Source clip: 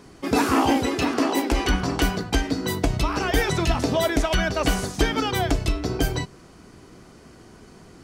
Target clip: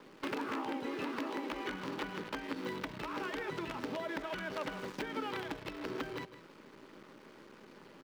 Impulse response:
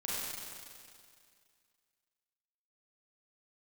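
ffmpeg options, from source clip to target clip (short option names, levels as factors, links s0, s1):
-filter_complex "[0:a]acrossover=split=2600[s0][s1];[s1]acompressor=threshold=0.0126:ratio=4:attack=1:release=60[s2];[s0][s2]amix=inputs=2:normalize=0,acrusher=bits=6:dc=4:mix=0:aa=0.000001,equalizer=f=61:w=5.1:g=-14,acompressor=threshold=0.0251:ratio=10,aeval=exprs='(mod(18.8*val(0)+1,2)-1)/18.8':c=same,asuperstop=centerf=710:order=4:qfactor=5.9,acrossover=split=180 4000:gain=0.112 1 0.141[s3][s4][s5];[s3][s4][s5]amix=inputs=3:normalize=0,asplit=2[s6][s7];[s7]aecho=0:1:159:0.211[s8];[s6][s8]amix=inputs=2:normalize=0,volume=0.841"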